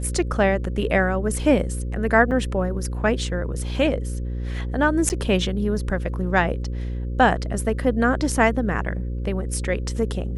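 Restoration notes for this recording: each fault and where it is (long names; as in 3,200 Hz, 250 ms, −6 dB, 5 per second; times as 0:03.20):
mains buzz 60 Hz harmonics 9 −27 dBFS
0:02.31–0:02.32: drop-out 6.4 ms
0:05.09–0:05.10: drop-out 9.6 ms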